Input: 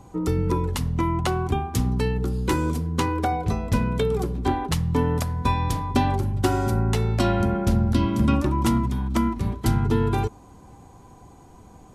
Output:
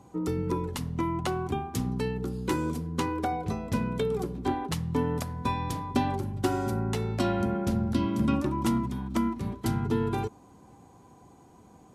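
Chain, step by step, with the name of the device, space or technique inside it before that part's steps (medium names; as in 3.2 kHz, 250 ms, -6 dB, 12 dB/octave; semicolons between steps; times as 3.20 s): filter by subtraction (in parallel: low-pass 210 Hz 12 dB/octave + polarity flip); on the sum: trim -6 dB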